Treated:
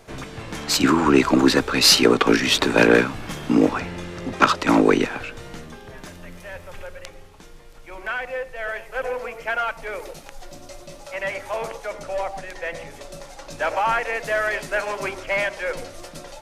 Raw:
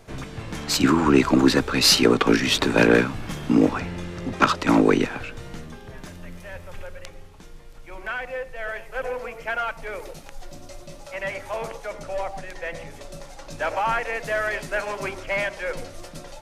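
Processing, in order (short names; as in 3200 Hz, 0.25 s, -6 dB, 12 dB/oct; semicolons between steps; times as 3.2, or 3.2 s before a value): tone controls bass -5 dB, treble 0 dB; gain +2.5 dB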